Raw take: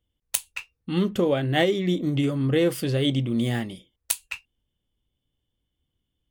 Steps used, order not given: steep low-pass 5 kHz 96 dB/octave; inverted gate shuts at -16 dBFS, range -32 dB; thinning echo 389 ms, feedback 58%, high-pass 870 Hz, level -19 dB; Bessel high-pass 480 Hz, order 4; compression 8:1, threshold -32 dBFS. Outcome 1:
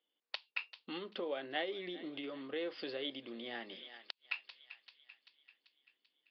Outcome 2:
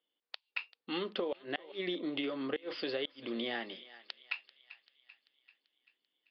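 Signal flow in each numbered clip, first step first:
thinning echo > compression > Bessel high-pass > inverted gate > steep low-pass; Bessel high-pass > inverted gate > thinning echo > compression > steep low-pass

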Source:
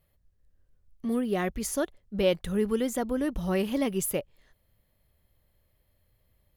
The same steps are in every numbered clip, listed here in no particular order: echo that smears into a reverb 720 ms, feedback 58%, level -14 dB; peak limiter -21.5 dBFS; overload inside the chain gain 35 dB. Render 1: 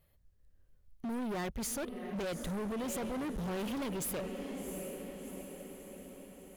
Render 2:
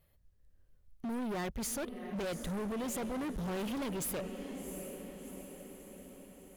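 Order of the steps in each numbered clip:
echo that smears into a reverb > peak limiter > overload inside the chain; peak limiter > echo that smears into a reverb > overload inside the chain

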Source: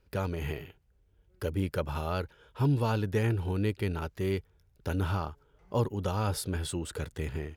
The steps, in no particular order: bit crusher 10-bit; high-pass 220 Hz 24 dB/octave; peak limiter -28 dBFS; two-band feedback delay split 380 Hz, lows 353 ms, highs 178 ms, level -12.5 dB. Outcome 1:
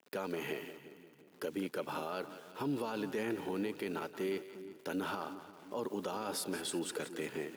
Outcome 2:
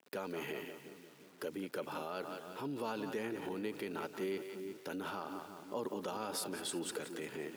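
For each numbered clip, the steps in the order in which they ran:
bit crusher > high-pass > peak limiter > two-band feedback delay; two-band feedback delay > bit crusher > peak limiter > high-pass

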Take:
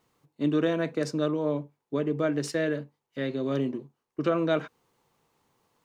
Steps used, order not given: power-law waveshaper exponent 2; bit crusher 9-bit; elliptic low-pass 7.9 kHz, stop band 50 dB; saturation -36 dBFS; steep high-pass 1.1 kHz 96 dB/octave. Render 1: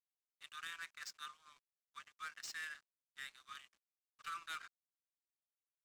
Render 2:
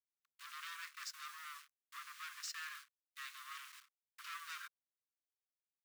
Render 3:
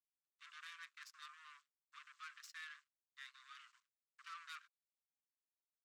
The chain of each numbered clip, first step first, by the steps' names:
steep high-pass > bit crusher > saturation > elliptic low-pass > power-law waveshaper; elliptic low-pass > saturation > bit crusher > power-law waveshaper > steep high-pass; bit crusher > elliptic low-pass > power-law waveshaper > saturation > steep high-pass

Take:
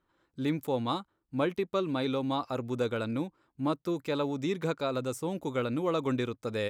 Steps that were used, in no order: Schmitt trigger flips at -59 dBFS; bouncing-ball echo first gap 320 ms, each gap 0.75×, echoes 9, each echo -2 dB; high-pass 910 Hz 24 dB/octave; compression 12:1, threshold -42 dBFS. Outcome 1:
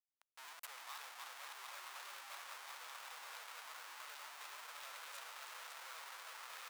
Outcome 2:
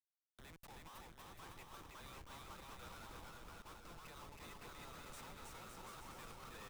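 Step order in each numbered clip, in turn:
bouncing-ball echo > compression > Schmitt trigger > high-pass; compression > high-pass > Schmitt trigger > bouncing-ball echo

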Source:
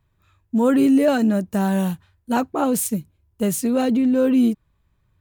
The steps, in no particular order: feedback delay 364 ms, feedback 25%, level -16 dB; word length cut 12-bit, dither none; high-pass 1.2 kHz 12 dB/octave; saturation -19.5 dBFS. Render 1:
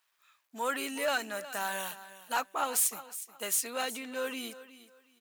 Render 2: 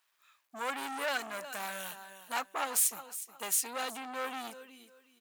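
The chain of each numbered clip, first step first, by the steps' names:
feedback delay > word length cut > high-pass > saturation; feedback delay > word length cut > saturation > high-pass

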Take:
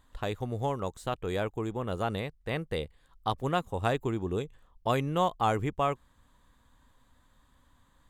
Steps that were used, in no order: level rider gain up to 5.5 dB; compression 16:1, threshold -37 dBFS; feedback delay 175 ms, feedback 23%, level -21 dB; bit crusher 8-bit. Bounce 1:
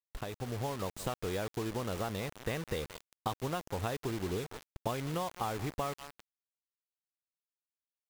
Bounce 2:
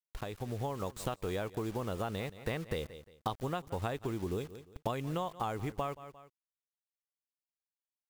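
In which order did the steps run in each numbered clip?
feedback delay > compression > bit crusher > level rider; bit crusher > feedback delay > compression > level rider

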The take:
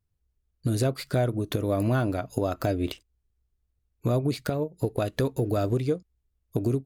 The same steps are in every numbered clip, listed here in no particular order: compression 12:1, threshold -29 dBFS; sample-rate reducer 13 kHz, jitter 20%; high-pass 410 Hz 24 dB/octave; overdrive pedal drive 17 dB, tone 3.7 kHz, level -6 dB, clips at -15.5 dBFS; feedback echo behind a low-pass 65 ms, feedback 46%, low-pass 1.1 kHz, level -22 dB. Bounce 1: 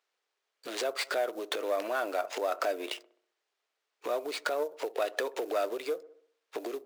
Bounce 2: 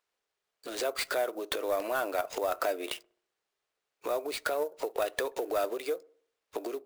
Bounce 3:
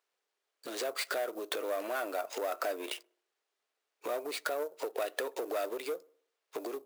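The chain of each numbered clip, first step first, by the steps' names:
sample-rate reducer > feedback echo behind a low-pass > compression > overdrive pedal > high-pass; compression > high-pass > overdrive pedal > sample-rate reducer > feedback echo behind a low-pass; overdrive pedal > compression > feedback echo behind a low-pass > sample-rate reducer > high-pass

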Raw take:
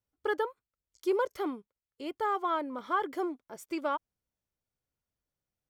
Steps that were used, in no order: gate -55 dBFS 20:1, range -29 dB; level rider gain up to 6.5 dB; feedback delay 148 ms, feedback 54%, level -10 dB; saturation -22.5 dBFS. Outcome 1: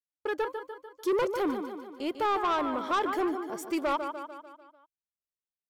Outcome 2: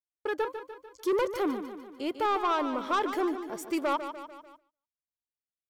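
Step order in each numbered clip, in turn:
level rider > gate > feedback delay > saturation; level rider > saturation > feedback delay > gate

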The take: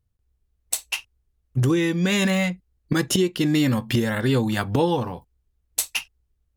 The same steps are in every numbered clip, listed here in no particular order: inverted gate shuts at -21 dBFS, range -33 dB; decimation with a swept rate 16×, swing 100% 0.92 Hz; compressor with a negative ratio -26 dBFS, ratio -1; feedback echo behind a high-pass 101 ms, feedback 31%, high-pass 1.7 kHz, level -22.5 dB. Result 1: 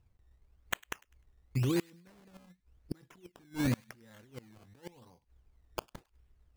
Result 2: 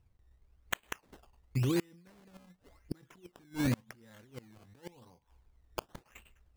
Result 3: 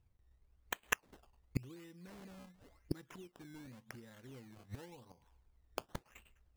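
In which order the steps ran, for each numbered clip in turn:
compressor with a negative ratio > decimation with a swept rate > inverted gate > feedback echo behind a high-pass; feedback echo behind a high-pass > compressor with a negative ratio > decimation with a swept rate > inverted gate; feedback echo behind a high-pass > decimation with a swept rate > inverted gate > compressor with a negative ratio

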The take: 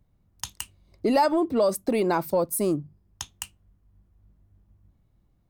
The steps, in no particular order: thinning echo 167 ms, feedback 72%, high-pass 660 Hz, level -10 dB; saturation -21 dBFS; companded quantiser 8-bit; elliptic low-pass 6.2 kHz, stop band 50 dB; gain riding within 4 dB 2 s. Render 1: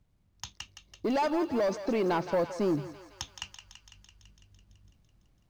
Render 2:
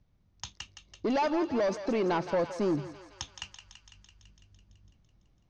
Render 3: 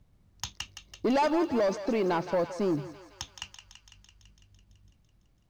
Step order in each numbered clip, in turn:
elliptic low-pass > saturation > companded quantiser > gain riding > thinning echo; saturation > thinning echo > companded quantiser > elliptic low-pass > gain riding; gain riding > elliptic low-pass > companded quantiser > saturation > thinning echo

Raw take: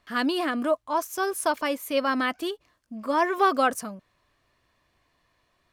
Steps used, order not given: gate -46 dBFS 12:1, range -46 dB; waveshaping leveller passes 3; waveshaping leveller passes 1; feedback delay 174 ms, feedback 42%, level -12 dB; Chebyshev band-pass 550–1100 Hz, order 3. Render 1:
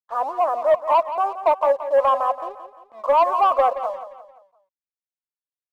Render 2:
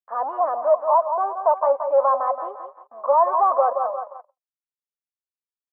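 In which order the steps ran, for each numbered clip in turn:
gate > first waveshaping leveller > Chebyshev band-pass > second waveshaping leveller > feedback delay; feedback delay > first waveshaping leveller > gate > second waveshaping leveller > Chebyshev band-pass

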